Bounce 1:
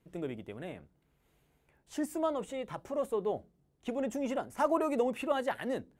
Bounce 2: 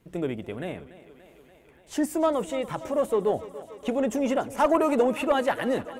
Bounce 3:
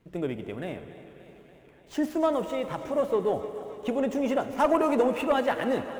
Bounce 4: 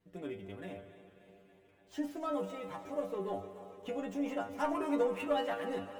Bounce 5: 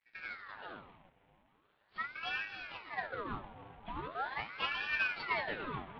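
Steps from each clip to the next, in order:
in parallel at −3 dB: sine wavefolder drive 4 dB, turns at −16.5 dBFS; on the sum: feedback echo with a high-pass in the loop 289 ms, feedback 75%, high-pass 200 Hz, level −16 dB
running median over 5 samples; convolution reverb RT60 3.8 s, pre-delay 6 ms, DRR 10 dB; level −1.5 dB
stiff-string resonator 95 Hz, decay 0.3 s, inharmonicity 0.002
variable-slope delta modulation 16 kbit/s; noise gate −56 dBFS, range −6 dB; ring modulator whose carrier an LFO sweeps 1,200 Hz, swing 75%, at 0.41 Hz

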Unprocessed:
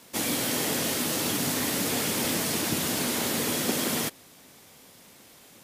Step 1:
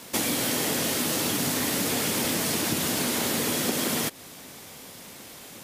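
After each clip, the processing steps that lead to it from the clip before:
downward compressor 4 to 1, threshold −33 dBFS, peak gain reduction 9.5 dB
level +8.5 dB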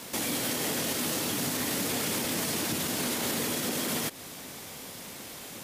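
brickwall limiter −22.5 dBFS, peak gain reduction 9 dB
level +1.5 dB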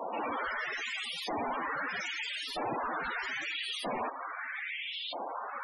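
auto-filter band-pass saw up 0.78 Hz 720–3,700 Hz
sine wavefolder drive 14 dB, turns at −28.5 dBFS
spectral peaks only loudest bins 32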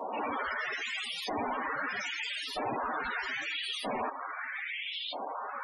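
notch comb filter 170 Hz
level +2 dB

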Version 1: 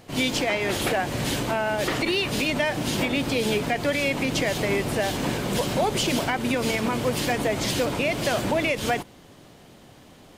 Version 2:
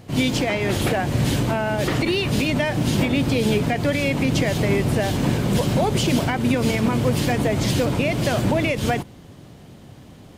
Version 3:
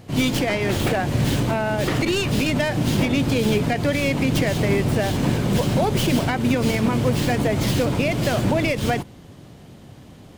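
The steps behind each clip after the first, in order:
parametric band 100 Hz +11 dB 2.8 octaves
stylus tracing distortion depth 0.1 ms

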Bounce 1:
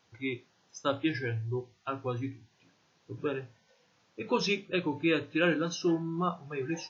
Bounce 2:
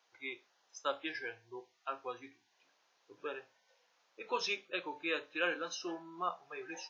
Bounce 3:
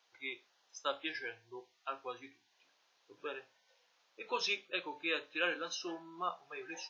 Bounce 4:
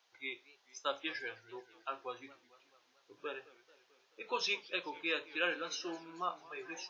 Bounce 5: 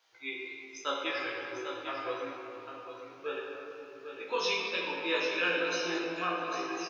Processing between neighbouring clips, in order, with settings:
Chebyshev high-pass filter 660 Hz, order 2; level −3.5 dB
parametric band 3,600 Hz +4.5 dB 1.3 octaves; level −1.5 dB
feedback echo with a swinging delay time 219 ms, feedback 62%, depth 198 cents, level −20.5 dB
double-tracking delay 18 ms −2.5 dB; single-tap delay 799 ms −8.5 dB; rectangular room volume 150 cubic metres, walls hard, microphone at 0.57 metres

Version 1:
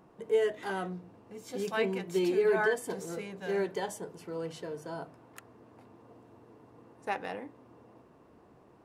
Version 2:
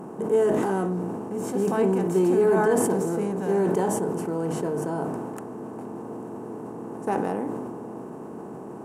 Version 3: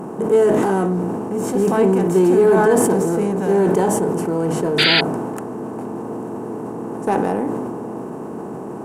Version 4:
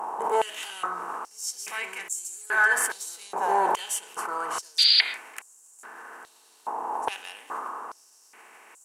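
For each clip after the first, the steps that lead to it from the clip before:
compressor on every frequency bin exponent 0.6; octave-band graphic EQ 125/250/1,000/2,000/4,000/8,000 Hz +7/+10/+6/−9/−12/+4 dB; level that may fall only so fast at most 24 dB per second
in parallel at −10 dB: soft clipping −29 dBFS, distortion −6 dB; on the sum: sound drawn into the spectrogram noise, 0:04.78–0:05.01, 1,300–4,900 Hz −21 dBFS; level +6 dB
on a send at −16.5 dB: convolution reverb, pre-delay 108 ms; on the sum: high-pass on a step sequencer 2.4 Hz 900–7,200 Hz; level −3 dB

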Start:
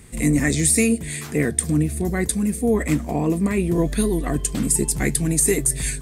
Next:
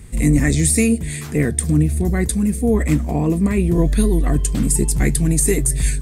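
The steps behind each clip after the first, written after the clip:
low-shelf EQ 130 Hz +12 dB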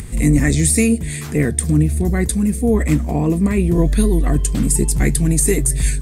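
upward compression, threshold −24 dBFS
level +1 dB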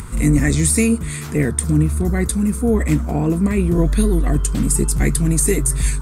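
noise in a band 900–1,500 Hz −46 dBFS
level −1 dB

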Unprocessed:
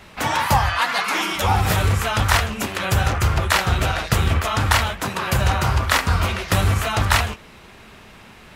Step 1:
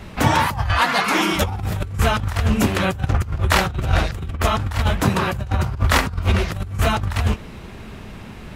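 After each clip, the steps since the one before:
low-shelf EQ 430 Hz +12 dB
compressor whose output falls as the input rises −14 dBFS, ratio −0.5
level −4 dB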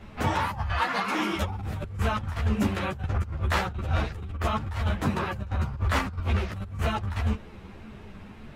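high-shelf EQ 4,200 Hz −8.5 dB
string-ensemble chorus
level −5 dB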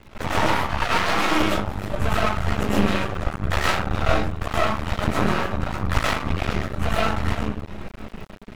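comb and all-pass reverb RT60 0.59 s, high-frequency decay 0.4×, pre-delay 75 ms, DRR −8 dB
half-wave rectification
surface crackle 43 per second −42 dBFS
level +3 dB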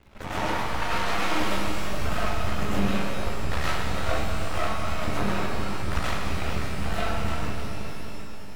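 reverb with rising layers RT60 3.1 s, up +12 semitones, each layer −8 dB, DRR 0.5 dB
level −8.5 dB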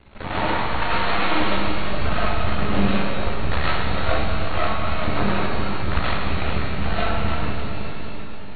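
linear-phase brick-wall low-pass 4,500 Hz
level +5 dB

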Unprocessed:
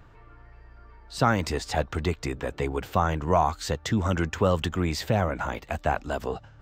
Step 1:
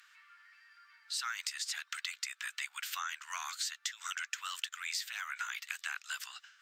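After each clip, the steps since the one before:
Butterworth high-pass 1,400 Hz 36 dB per octave
parametric band 8,600 Hz +9.5 dB 2.7 octaves
downward compressor 6 to 1, threshold −35 dBFS, peak gain reduction 13 dB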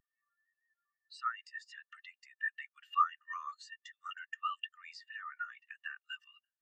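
hollow resonant body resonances 1,200/1,800/2,800 Hz, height 10 dB, ringing for 25 ms
every bin expanded away from the loudest bin 2.5 to 1
level −1.5 dB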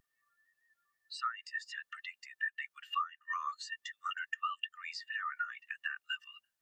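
downward compressor 6 to 1, threshold −41 dBFS, peak gain reduction 17.5 dB
level +8 dB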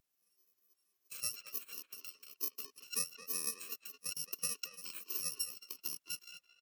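samples in bit-reversed order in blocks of 64 samples
far-end echo of a speakerphone 220 ms, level −8 dB
harmonic and percussive parts rebalanced percussive −5 dB
level +1 dB

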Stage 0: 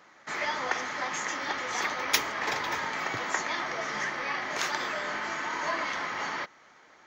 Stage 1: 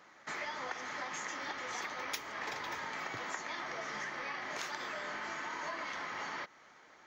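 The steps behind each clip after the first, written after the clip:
downward compressor 4 to 1, threshold −35 dBFS, peak gain reduction 14 dB
level −3 dB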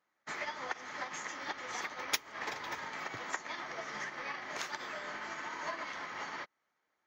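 expander for the loud parts 2.5 to 1, over −55 dBFS
level +7.5 dB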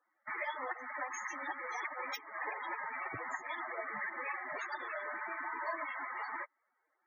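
soft clipping −32.5 dBFS, distortion −12 dB
spectral peaks only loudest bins 32
level +4 dB

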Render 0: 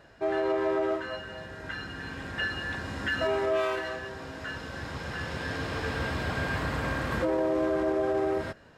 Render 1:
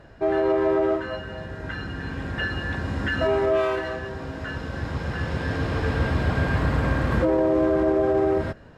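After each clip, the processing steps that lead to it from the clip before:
spectral tilt −2 dB per octave
level +4 dB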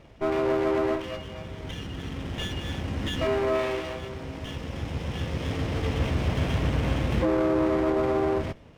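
lower of the sound and its delayed copy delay 0.34 ms
level −2.5 dB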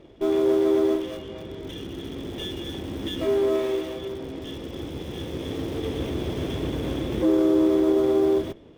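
in parallel at −8 dB: wrap-around overflow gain 30 dB
on the sum: hollow resonant body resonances 350/3,400 Hz, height 15 dB, ringing for 20 ms
level −7.5 dB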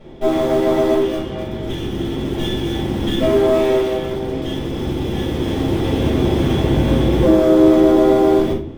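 convolution reverb RT60 0.45 s, pre-delay 4 ms, DRR −8 dB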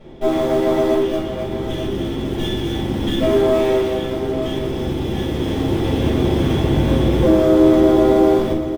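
single-tap delay 889 ms −10.5 dB
level −1 dB

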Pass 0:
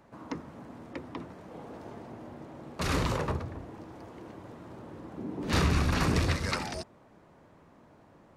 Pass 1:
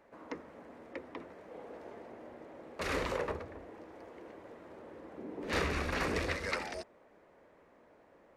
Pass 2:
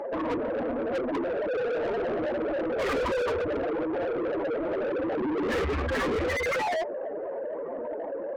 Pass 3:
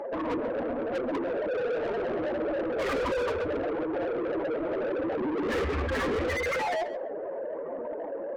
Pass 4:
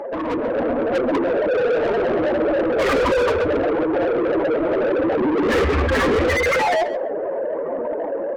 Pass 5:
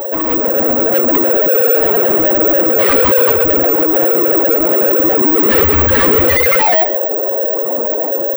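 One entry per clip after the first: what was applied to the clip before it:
octave-band graphic EQ 125/500/2,000 Hz −10/+9/+8 dB; level −8.5 dB
expanding power law on the bin magnitudes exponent 2.9; in parallel at −0.5 dB: downward compressor, threshold −44 dBFS, peak gain reduction 14.5 dB; on the sum: mid-hump overdrive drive 36 dB, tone 2,600 Hz, clips at −21 dBFS
feedback echo with a low-pass in the loop 135 ms, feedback 15%, low-pass 3,100 Hz, level −10 dB; level −1.5 dB
automatic gain control gain up to 4.5 dB; level +6 dB
in parallel at −3.5 dB: soft clipping −19 dBFS, distortion −15 dB; on the sum: bad sample-rate conversion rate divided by 2×, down none, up zero stuff; level +1.5 dB

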